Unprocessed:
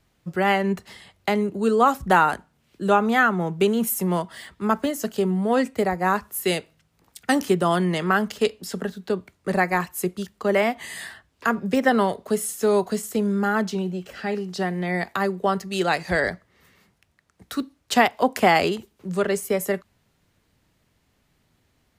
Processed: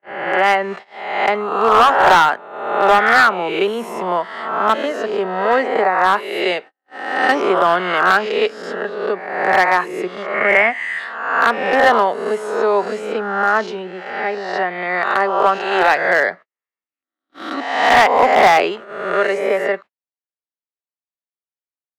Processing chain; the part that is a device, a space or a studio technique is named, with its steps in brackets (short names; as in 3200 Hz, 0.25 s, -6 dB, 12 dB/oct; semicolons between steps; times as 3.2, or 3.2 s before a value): spectral swells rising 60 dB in 1.03 s; walkie-talkie (BPF 540–2300 Hz; hard clip -14 dBFS, distortion -14 dB; gate -40 dBFS, range -45 dB); 10.34–10.99 graphic EQ 125/500/1000/2000/4000/8000 Hz +10/-4/-3/+9/-9/+3 dB; gain +8 dB